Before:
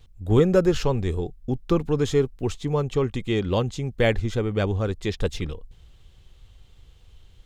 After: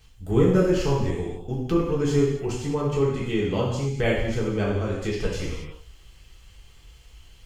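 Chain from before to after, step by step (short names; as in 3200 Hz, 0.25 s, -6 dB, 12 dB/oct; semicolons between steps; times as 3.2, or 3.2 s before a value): notch 3700 Hz, Q 5.1; non-linear reverb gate 0.3 s falling, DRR -5 dB; mismatched tape noise reduction encoder only; gain -6.5 dB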